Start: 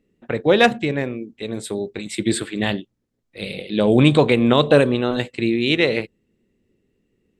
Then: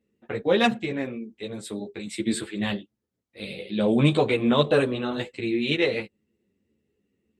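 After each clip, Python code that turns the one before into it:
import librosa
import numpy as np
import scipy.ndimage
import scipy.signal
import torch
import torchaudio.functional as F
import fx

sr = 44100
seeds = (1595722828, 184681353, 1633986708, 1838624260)

y = scipy.signal.sosfilt(scipy.signal.butter(2, 62.0, 'highpass', fs=sr, output='sos'), x)
y = fx.ensemble(y, sr)
y = y * librosa.db_to_amplitude(-3.0)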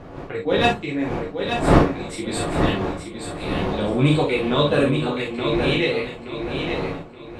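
y = fx.dmg_wind(x, sr, seeds[0], corner_hz=580.0, level_db=-29.0)
y = fx.echo_feedback(y, sr, ms=875, feedback_pct=32, wet_db=-6.5)
y = fx.rev_gated(y, sr, seeds[1], gate_ms=80, shape='flat', drr_db=-0.5)
y = y * librosa.db_to_amplitude(-1.0)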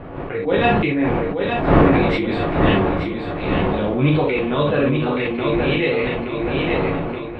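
y = fx.rider(x, sr, range_db=3, speed_s=0.5)
y = scipy.signal.sosfilt(scipy.signal.butter(4, 3100.0, 'lowpass', fs=sr, output='sos'), y)
y = fx.sustainer(y, sr, db_per_s=24.0)
y = y * librosa.db_to_amplitude(2.0)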